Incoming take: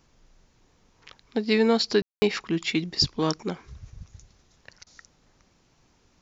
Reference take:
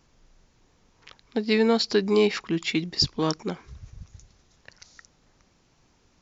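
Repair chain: room tone fill 2.02–2.22 s; interpolate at 4.84 s, 25 ms

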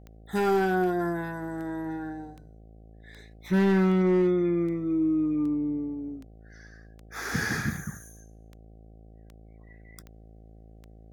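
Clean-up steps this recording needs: clip repair -18 dBFS; de-click; de-hum 54.6 Hz, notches 14

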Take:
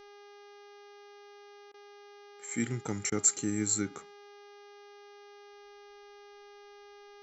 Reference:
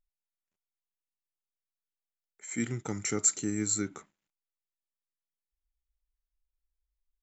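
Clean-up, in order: de-hum 407.9 Hz, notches 15; interpolate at 1.72/3.10 s, 19 ms

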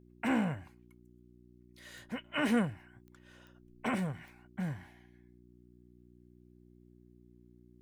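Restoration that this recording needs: de-click; de-hum 60.3 Hz, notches 6

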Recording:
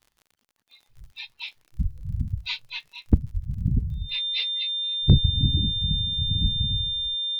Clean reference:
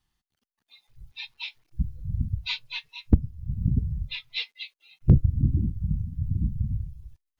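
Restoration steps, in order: de-click; band-stop 3.6 kHz, Q 30; de-plosive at 1.82/3.33/3.73/5.09/6.43 s

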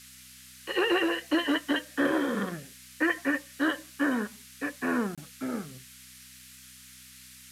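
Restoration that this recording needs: de-hum 63.4 Hz, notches 4; interpolate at 5.15 s, 26 ms; noise print and reduce 23 dB

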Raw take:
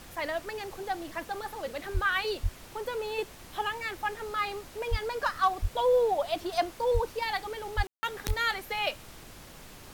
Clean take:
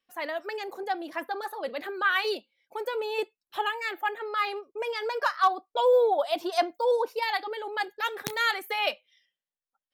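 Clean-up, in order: de-plosive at 1.93/2.42/4.90/5.61/6.93/7.76/8.27 s; room tone fill 7.87–8.03 s; noise print and reduce 30 dB; trim 0 dB, from 0.45 s +3 dB

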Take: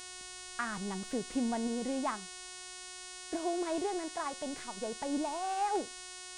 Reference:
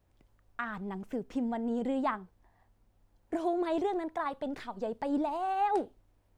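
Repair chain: de-hum 366.1 Hz, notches 27; gain correction +3.5 dB, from 1.67 s

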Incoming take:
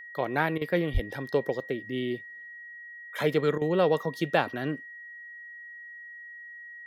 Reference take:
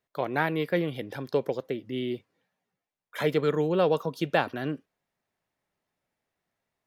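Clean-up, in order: band-stop 1.9 kHz, Q 30; 0.93–1.05 s: high-pass 140 Hz 24 dB/octave; interpolate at 0.58/3.58 s, 33 ms

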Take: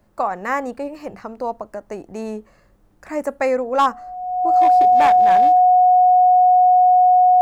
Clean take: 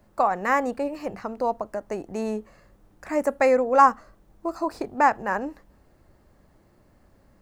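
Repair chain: clip repair -9 dBFS; band-stop 730 Hz, Q 30

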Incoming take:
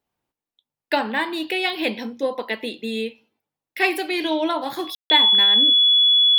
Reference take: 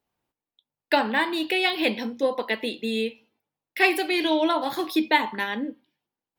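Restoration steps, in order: band-stop 3.4 kHz, Q 30; room tone fill 4.95–5.10 s

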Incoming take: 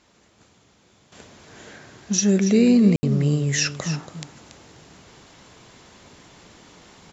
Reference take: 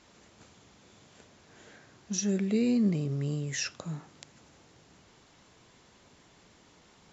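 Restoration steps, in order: room tone fill 2.96–3.03 s; inverse comb 282 ms -11 dB; gain correction -10.5 dB, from 1.12 s

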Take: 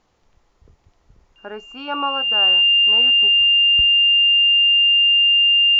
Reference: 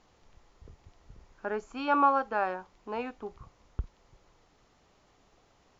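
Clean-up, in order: band-stop 2.8 kHz, Q 30

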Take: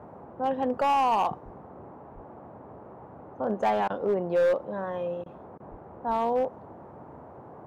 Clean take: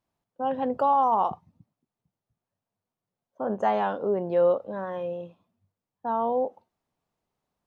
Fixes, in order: clip repair -19 dBFS; de-plosive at 1.44/2.14/5.70/6.07 s; interpolate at 3.88/5.24/5.58 s, 19 ms; noise print and reduce 30 dB

